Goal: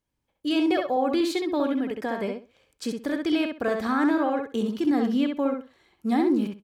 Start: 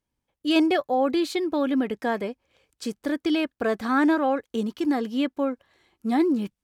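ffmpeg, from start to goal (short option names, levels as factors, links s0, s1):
-filter_complex "[0:a]asplit=3[s0][s1][s2];[s0]afade=t=out:st=1.66:d=0.02[s3];[s1]acompressor=threshold=0.0501:ratio=6,afade=t=in:st=1.66:d=0.02,afade=t=out:st=2.21:d=0.02[s4];[s2]afade=t=in:st=2.21:d=0.02[s5];[s3][s4][s5]amix=inputs=3:normalize=0,asettb=1/sr,asplit=3[s6][s7][s8];[s6]atrim=end=4.794[s9];[s7]atrim=start=4.79:end=5.37,asetpts=PTS-STARTPTS,afade=t=in:d=0.004:c=qsin,afade=t=out:st=0.576:d=0.004:c=qsin,equalizer=f=150:w=1:g=8[s10];[s8]atrim=start=5.366[s11];[s9][s10]acrossfade=d=0.004:c1=hsin:c2=qsin[s12];[s12][s11]acrossfade=d=0.004:c1=qsin:c2=hsin,alimiter=limit=0.133:level=0:latency=1:release=90,asplit=2[s13][s14];[s14]adelay=65,lowpass=f=4400:p=1,volume=0.631,asplit=2[s15][s16];[s16]adelay=65,lowpass=f=4400:p=1,volume=0.2,asplit=2[s17][s18];[s18]adelay=65,lowpass=f=4400:p=1,volume=0.2[s19];[s13][s15][s17][s19]amix=inputs=4:normalize=0"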